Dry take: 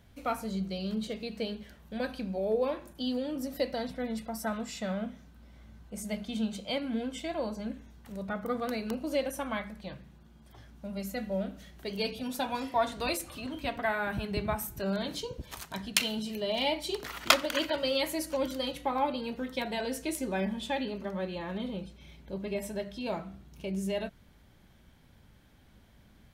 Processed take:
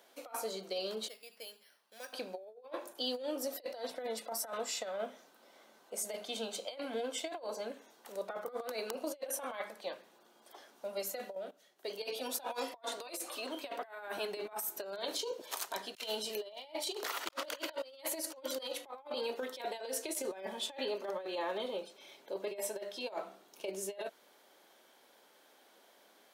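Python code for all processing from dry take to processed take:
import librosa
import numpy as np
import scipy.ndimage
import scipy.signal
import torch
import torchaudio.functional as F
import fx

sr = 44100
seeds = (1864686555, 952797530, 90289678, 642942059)

y = fx.chain(x, sr, fx.tone_stack(knobs='5-5-5'),
    fx.resample_bad(factor=6, down='filtered', up='hold'), at=(1.08, 2.13))
y = fx.chain(y, sr, fx.low_shelf(hz=98.0, db=9.5),
    fx.level_steps(step_db=20), at=(11.35, 12.03))
y = scipy.signal.sosfilt(scipy.signal.butter(4, 410.0, 'highpass', fs=sr, output='sos'), y)
y = fx.peak_eq(y, sr, hz=2100.0, db=-5.5, octaves=1.4)
y = fx.over_compress(y, sr, threshold_db=-40.0, ratio=-0.5)
y = y * 10.0 ** (1.0 / 20.0)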